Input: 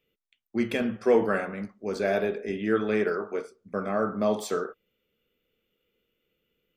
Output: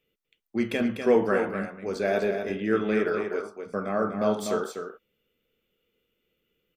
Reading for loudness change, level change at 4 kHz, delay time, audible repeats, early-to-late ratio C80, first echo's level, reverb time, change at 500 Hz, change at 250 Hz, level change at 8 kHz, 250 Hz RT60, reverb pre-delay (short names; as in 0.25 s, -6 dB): +1.0 dB, +1.0 dB, 0.247 s, 1, none, -7.0 dB, none, +1.0 dB, +1.0 dB, +1.0 dB, none, none